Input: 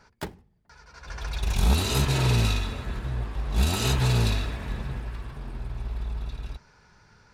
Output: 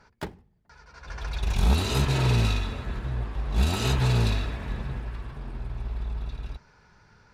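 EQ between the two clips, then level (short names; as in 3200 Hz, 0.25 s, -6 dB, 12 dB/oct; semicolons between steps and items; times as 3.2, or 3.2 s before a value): high shelf 6000 Hz -8 dB; 0.0 dB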